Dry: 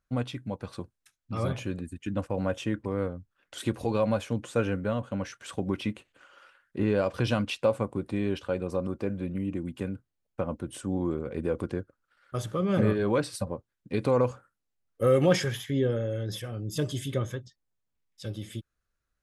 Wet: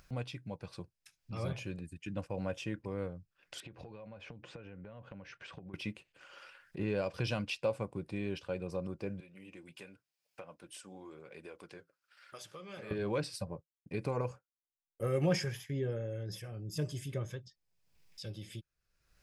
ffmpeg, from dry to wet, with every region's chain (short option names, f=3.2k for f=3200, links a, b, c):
-filter_complex "[0:a]asettb=1/sr,asplit=3[a][b][c];[a]atrim=end=3.604[d];[b]atrim=start=3.6:end=5.74,asetpts=PTS-STARTPTS,afade=t=in:d=0.004:c=qsin,afade=t=out:st=2.136:d=0.004:c=qsin,acompressor=threshold=-39dB:ratio=10:attack=3.2:release=140:knee=1:detection=peak,lowpass=2.8k[e];[c]atrim=start=5.736[f];[d][e]acrossfade=d=0.004:c1=hsin:c2=qsin[g];[g][f]acrossfade=d=0.004:c1=qsin:c2=hsin,asettb=1/sr,asplit=3[h][i][j];[h]atrim=end=9.204[k];[i]atrim=start=9.2:end=12.91,asetpts=PTS-STARTPTS,afade=t=in:d=0.004:c=qsin,afade=t=out:st=3.706:d=0.004:c=qsin,highpass=f=1.2k:p=1,flanger=delay=2.9:depth=6.2:regen=-57:speed=1.3:shape=sinusoidal[l];[j]atrim=start=12.906[m];[k][l]acrossfade=d=0.004:c1=hsin:c2=qsin[n];[n][m]acrossfade=d=0.004:c1=qsin:c2=hsin,asettb=1/sr,asplit=3[o][p][q];[o]atrim=end=13.474[r];[p]atrim=start=13.47:end=17.29,asetpts=PTS-STARTPTS,afade=t=in:d=0.004:c=qsin,afade=t=out:st=3.816:d=0.004:c=qsin,equalizer=f=3.6k:w=1.8:g=-8,agate=range=-33dB:threshold=-45dB:ratio=3:release=100:detection=peak,bandreject=f=510:w=17[s];[q]atrim=start=17.286[t];[r][s]acrossfade=d=0.004:c1=hsin:c2=qsin[u];[u][t]acrossfade=d=0.004:c1=qsin:c2=hsin,equalizer=f=160:t=o:w=0.33:g=6,equalizer=f=250:t=o:w=0.33:g=-8,equalizer=f=1.25k:t=o:w=0.33:g=-4,equalizer=f=2.5k:t=o:w=0.33:g=6,equalizer=f=5k:t=o:w=0.33:g=8,acompressor=mode=upward:threshold=-35dB:ratio=2.5,volume=-8dB"